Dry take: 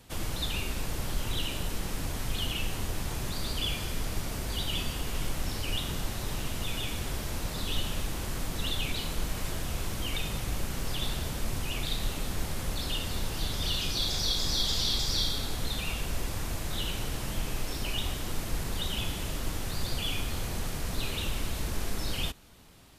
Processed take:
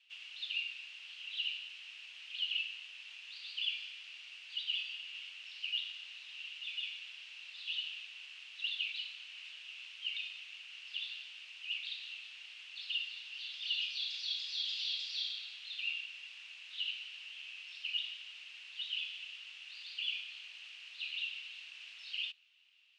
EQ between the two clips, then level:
dynamic equaliser 4,300 Hz, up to +6 dB, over −47 dBFS, Q 2.9
four-pole ladder band-pass 2,900 Hz, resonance 80%
high-frequency loss of the air 74 metres
0.0 dB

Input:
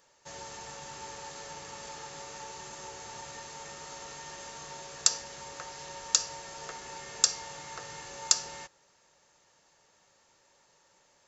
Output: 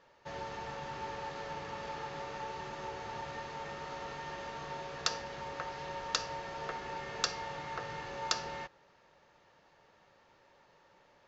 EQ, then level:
high-frequency loss of the air 280 metres
+5.0 dB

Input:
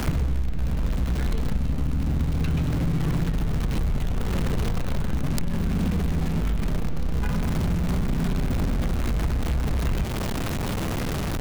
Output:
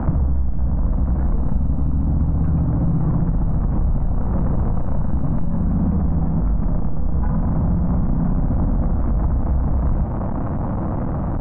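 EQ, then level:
low-pass filter 1,100 Hz 24 dB per octave
parametric band 410 Hz −13.5 dB 0.23 octaves
+5.5 dB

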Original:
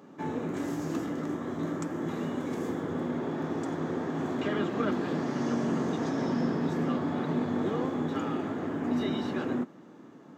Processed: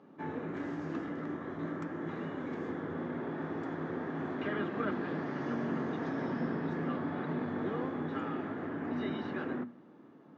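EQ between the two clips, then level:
mains-hum notches 60/120/180/240 Hz
dynamic equaliser 1,700 Hz, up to +6 dB, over −52 dBFS, Q 1.5
high-frequency loss of the air 210 metres
−5.0 dB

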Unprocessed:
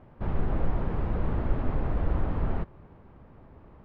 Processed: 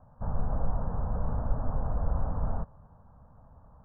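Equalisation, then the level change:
Butterworth low-pass 1,900 Hz 96 dB per octave
dynamic equaliser 390 Hz, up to +5 dB, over −46 dBFS, Q 1.1
phaser with its sweep stopped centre 860 Hz, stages 4
−1.5 dB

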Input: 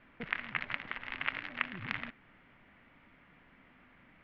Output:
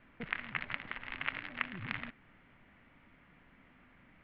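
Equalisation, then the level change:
low-pass filter 4,800 Hz 24 dB per octave
low-shelf EQ 190 Hz +4.5 dB
−2.0 dB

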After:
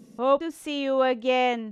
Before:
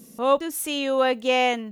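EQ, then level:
head-to-tape spacing loss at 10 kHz 22 dB
high-shelf EQ 4,900 Hz +6 dB
0.0 dB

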